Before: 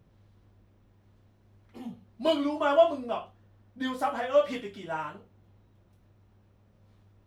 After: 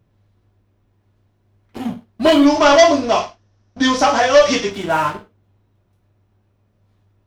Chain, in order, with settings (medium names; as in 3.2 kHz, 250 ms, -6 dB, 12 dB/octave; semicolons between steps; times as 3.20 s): waveshaping leveller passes 3; 2.46–4.71 s: resonant low-pass 5.7 kHz, resonance Q 5.9; gated-style reverb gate 130 ms falling, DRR 8 dB; trim +5.5 dB